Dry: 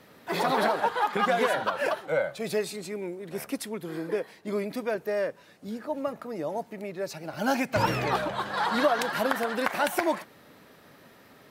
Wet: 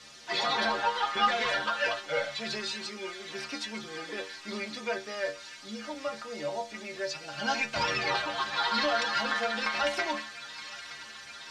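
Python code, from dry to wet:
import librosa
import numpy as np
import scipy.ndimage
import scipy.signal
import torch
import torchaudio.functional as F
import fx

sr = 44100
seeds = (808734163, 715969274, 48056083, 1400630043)

p1 = fx.dmg_noise_colour(x, sr, seeds[0], colour='violet', level_db=-44.0)
p2 = fx.tilt_shelf(p1, sr, db=-8.5, hz=1400.0)
p3 = fx.leveller(p2, sr, passes=3)
p4 = scipy.signal.sosfilt(scipy.signal.butter(4, 5400.0, 'lowpass', fs=sr, output='sos'), p3)
p5 = fx.stiff_resonator(p4, sr, f0_hz=70.0, decay_s=0.39, stiffness=0.008)
p6 = p5 + fx.echo_wet_highpass(p5, sr, ms=920, feedback_pct=75, hz=1600.0, wet_db=-13, dry=0)
y = p6 * librosa.db_to_amplitude(-1.5)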